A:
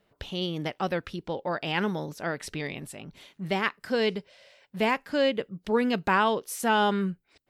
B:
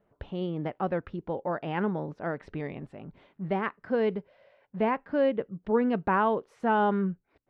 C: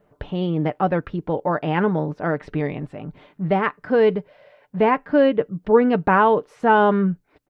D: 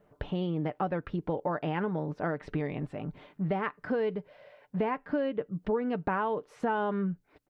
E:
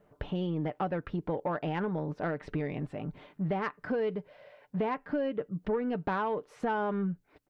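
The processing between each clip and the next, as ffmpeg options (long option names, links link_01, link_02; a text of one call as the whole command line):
ffmpeg -i in.wav -af "lowpass=1300" out.wav
ffmpeg -i in.wav -af "aecho=1:1:6.7:0.33,volume=9dB" out.wav
ffmpeg -i in.wav -af "acompressor=threshold=-24dB:ratio=5,volume=-3.5dB" out.wav
ffmpeg -i in.wav -af "asoftclip=type=tanh:threshold=-21dB" out.wav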